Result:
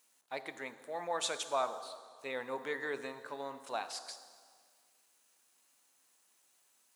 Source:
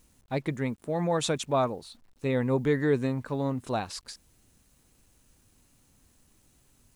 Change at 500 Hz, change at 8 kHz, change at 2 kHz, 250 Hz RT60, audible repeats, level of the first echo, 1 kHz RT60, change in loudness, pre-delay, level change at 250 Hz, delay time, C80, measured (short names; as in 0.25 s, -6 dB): -11.0 dB, -3.5 dB, -3.5 dB, 1.9 s, none, none, 1.8 s, -10.0 dB, 5 ms, -21.0 dB, none, 13.0 dB